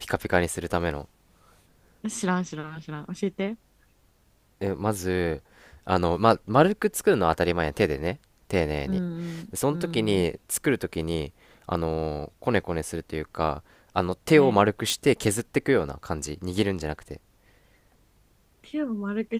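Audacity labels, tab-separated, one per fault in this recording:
14.900000	14.900000	pop

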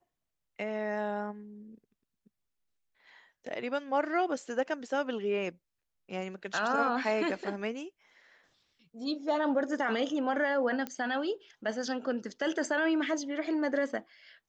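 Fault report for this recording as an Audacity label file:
10.870000	10.870000	pop -21 dBFS

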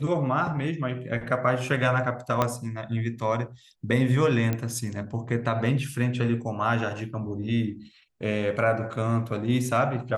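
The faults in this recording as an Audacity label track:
2.420000	2.420000	pop -9 dBFS
4.530000	4.530000	pop -14 dBFS

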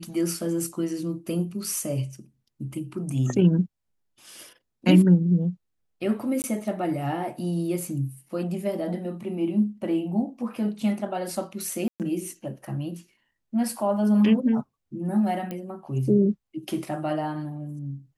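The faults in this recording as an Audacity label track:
6.420000	6.440000	gap 19 ms
11.880000	12.000000	gap 0.118 s
15.510000	15.510000	pop -19 dBFS

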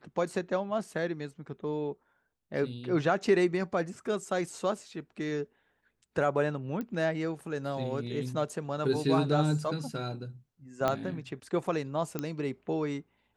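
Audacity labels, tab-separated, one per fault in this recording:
6.810000	6.810000	pop -24 dBFS
10.880000	10.880000	pop -14 dBFS
12.190000	12.190000	pop -18 dBFS

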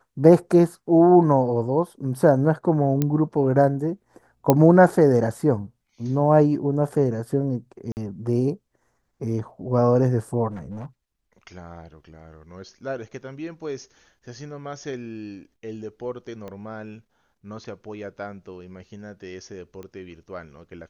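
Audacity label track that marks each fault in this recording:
3.020000	3.020000	pop -9 dBFS
4.500000	4.500000	pop -3 dBFS
7.920000	7.970000	gap 49 ms
10.510000	10.860000	clipped -30.5 dBFS
16.480000	16.480000	pop -24 dBFS
19.830000	19.830000	pop -26 dBFS

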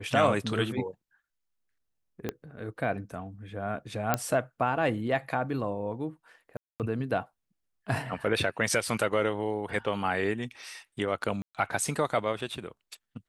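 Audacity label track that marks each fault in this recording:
2.290000	2.290000	pop -17 dBFS
4.140000	4.140000	pop -9 dBFS
6.570000	6.800000	gap 0.228 s
11.420000	11.550000	gap 0.127 s

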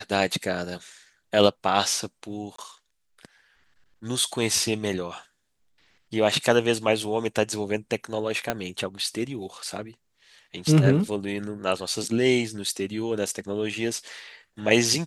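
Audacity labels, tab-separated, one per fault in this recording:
2.560000	2.580000	gap 24 ms
8.500000	8.500000	pop -9 dBFS

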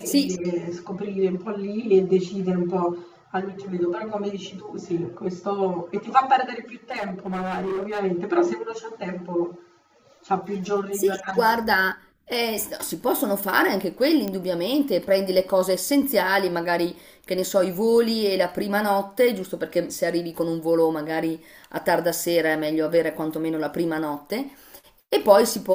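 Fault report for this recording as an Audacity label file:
6.910000	8.000000	clipped -24 dBFS
14.280000	14.280000	pop -14 dBFS

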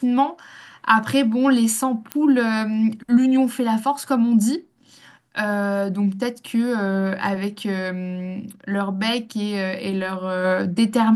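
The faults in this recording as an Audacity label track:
2.120000	2.120000	pop -10 dBFS

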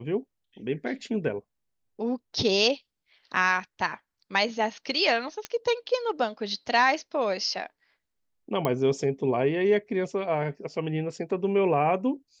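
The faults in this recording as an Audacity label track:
5.450000	5.450000	pop -16 dBFS
8.650000	8.650000	pop -13 dBFS

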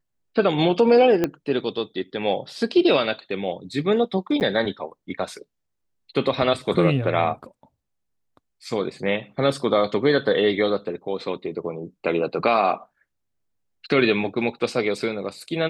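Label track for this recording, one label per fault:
1.240000	1.240000	pop -8 dBFS
4.400000	4.410000	gap 9.2 ms

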